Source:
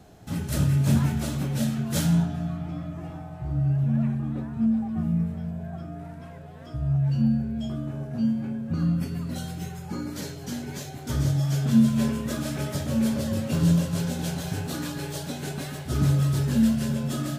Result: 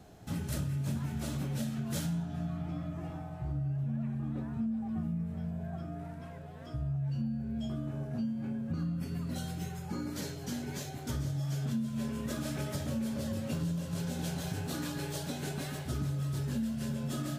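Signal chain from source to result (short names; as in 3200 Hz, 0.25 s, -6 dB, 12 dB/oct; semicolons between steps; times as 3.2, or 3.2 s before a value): compressor 6:1, threshold -28 dBFS, peak gain reduction 14 dB; gain -3.5 dB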